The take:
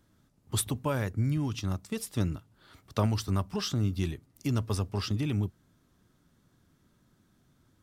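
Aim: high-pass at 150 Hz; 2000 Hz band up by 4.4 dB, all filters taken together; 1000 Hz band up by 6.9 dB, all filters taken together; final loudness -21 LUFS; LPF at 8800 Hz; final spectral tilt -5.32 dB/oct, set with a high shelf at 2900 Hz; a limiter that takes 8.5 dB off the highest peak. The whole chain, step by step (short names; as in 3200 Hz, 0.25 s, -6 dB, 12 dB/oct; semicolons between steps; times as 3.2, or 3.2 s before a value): HPF 150 Hz; LPF 8800 Hz; bell 1000 Hz +7.5 dB; bell 2000 Hz +5.5 dB; high shelf 2900 Hz -5.5 dB; gain +13.5 dB; limiter -6.5 dBFS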